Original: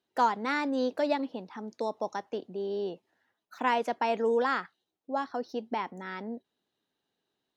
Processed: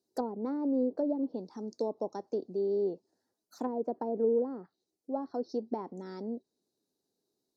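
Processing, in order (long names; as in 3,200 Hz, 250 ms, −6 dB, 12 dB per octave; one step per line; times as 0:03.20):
treble cut that deepens with the level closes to 510 Hz, closed at −24 dBFS
drawn EQ curve 120 Hz 0 dB, 390 Hz +6 dB, 2,100 Hz −17 dB, 3,000 Hz −20 dB, 4,500 Hz +7 dB
level −2.5 dB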